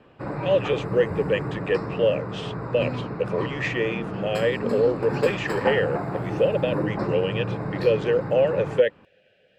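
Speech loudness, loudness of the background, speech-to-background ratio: −25.0 LKFS, −30.0 LKFS, 5.0 dB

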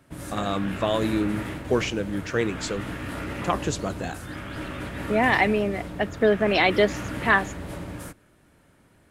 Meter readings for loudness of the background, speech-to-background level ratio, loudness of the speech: −34.5 LKFS, 9.5 dB, −25.0 LKFS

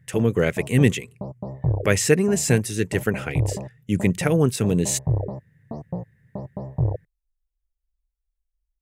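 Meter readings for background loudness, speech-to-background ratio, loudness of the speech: −31.0 LKFS, 9.0 dB, −22.0 LKFS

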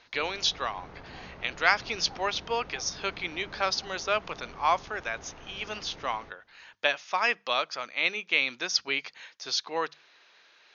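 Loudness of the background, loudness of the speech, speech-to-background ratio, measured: −48.0 LKFS, −29.5 LKFS, 18.5 dB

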